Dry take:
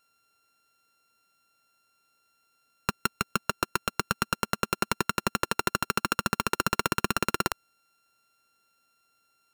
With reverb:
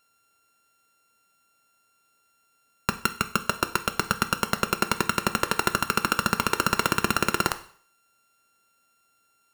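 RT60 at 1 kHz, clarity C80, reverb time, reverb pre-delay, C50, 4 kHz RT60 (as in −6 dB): 0.50 s, 18.5 dB, 0.55 s, 6 ms, 15.0 dB, 0.50 s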